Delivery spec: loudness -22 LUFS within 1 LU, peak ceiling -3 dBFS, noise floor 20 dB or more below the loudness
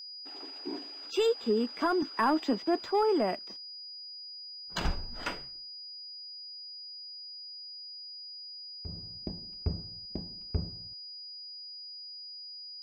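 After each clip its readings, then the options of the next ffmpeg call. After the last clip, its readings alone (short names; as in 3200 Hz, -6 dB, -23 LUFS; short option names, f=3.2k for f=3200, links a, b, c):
steady tone 4900 Hz; tone level -42 dBFS; loudness -35.0 LUFS; peak -19.0 dBFS; loudness target -22.0 LUFS
-> -af "bandreject=f=4.9k:w=30"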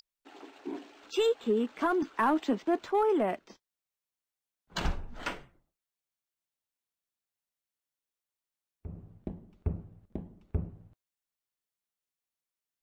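steady tone none; loudness -31.5 LUFS; peak -19.5 dBFS; loudness target -22.0 LUFS
-> -af "volume=9.5dB"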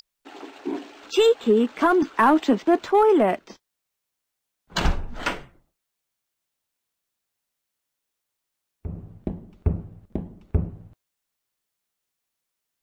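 loudness -22.0 LUFS; peak -10.0 dBFS; noise floor -82 dBFS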